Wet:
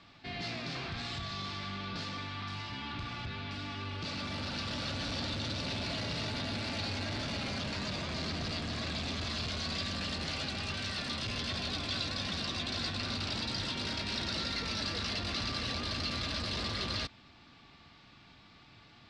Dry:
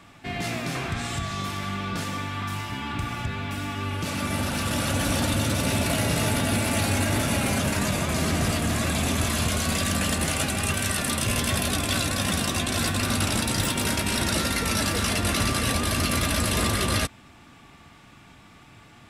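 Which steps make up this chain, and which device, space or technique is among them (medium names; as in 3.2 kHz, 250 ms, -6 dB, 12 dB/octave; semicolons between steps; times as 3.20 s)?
overdriven synthesiser ladder filter (saturation -25 dBFS, distortion -11 dB; four-pole ladder low-pass 5 kHz, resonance 60%); trim +2 dB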